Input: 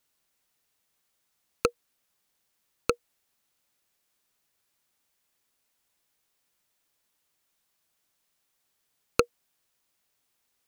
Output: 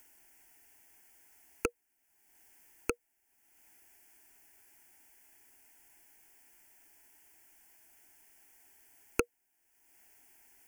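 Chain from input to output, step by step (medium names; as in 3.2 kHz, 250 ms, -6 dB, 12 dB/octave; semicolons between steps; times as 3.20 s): static phaser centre 790 Hz, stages 8; in parallel at +1.5 dB: upward compressor, threshold -39 dBFS; on the sum: trim -7.5 dB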